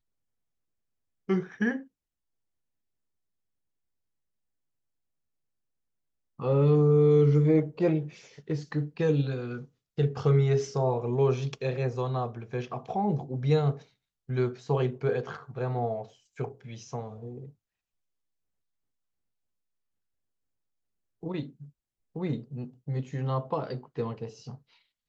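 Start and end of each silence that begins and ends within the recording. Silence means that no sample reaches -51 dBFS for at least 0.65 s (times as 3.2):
1.87–6.39
17.51–21.23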